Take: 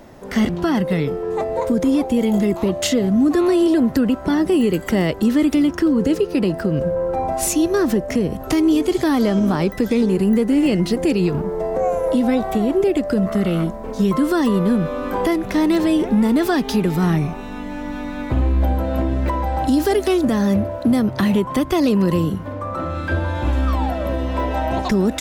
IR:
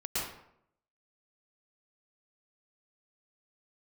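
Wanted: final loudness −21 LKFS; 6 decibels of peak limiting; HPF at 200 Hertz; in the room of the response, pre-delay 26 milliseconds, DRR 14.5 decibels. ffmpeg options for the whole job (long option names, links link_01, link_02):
-filter_complex "[0:a]highpass=200,alimiter=limit=-14dB:level=0:latency=1,asplit=2[link_01][link_02];[1:a]atrim=start_sample=2205,adelay=26[link_03];[link_02][link_03]afir=irnorm=-1:irlink=0,volume=-20dB[link_04];[link_01][link_04]amix=inputs=2:normalize=0,volume=1.5dB"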